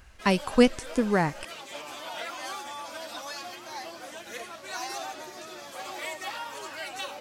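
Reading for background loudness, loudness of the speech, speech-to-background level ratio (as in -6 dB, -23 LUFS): -38.0 LUFS, -25.0 LUFS, 13.0 dB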